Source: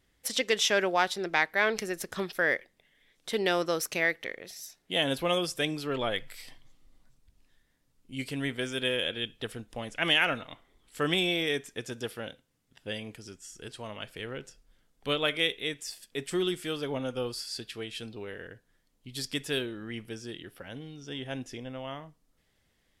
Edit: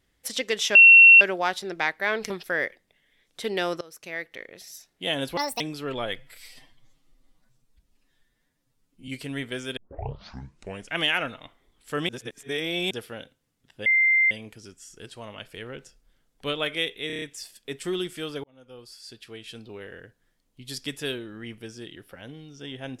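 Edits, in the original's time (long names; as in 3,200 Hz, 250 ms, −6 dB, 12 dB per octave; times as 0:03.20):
0:00.75: insert tone 2,720 Hz −7.5 dBFS 0.46 s
0:01.84–0:02.19: remove
0:03.70–0:04.54: fade in, from −23.5 dB
0:05.26–0:05.64: play speed 163%
0:06.22–0:08.15: time-stretch 1.5×
0:08.84: tape start 1.13 s
0:11.16–0:11.98: reverse
0:12.93: insert tone 2,090 Hz −16.5 dBFS 0.45 s
0:15.69: stutter 0.03 s, 6 plays
0:16.91–0:18.27: fade in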